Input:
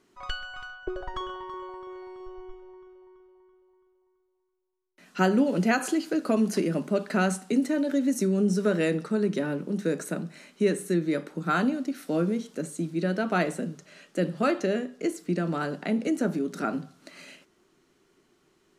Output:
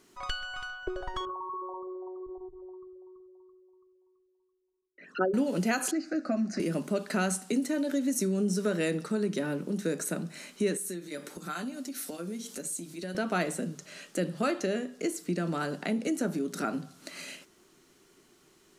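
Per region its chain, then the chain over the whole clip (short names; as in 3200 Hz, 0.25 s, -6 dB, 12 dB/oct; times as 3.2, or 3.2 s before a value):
1.25–5.34 formant sharpening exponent 3 + HPF 87 Hz 6 dB/oct + notches 50/100/150/200/250/300/350/400/450 Hz
5.91–6.6 LPF 5400 Hz 24 dB/oct + fixed phaser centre 650 Hz, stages 8
10.77–13.15 high shelf 4300 Hz +9 dB + compressor 2:1, threshold -41 dBFS + notch comb 160 Hz
whole clip: high shelf 4700 Hz +9.5 dB; compressor 1.5:1, threshold -40 dBFS; gain +2.5 dB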